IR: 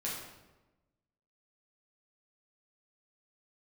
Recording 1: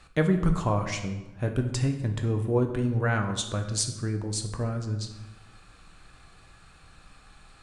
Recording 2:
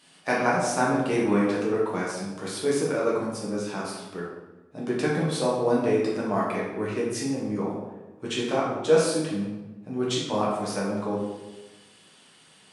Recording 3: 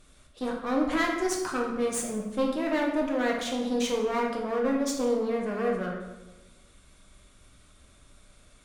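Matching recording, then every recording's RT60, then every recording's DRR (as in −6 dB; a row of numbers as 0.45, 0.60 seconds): 2; 1.1, 1.1, 1.1 seconds; 5.0, −6.0, −1.0 decibels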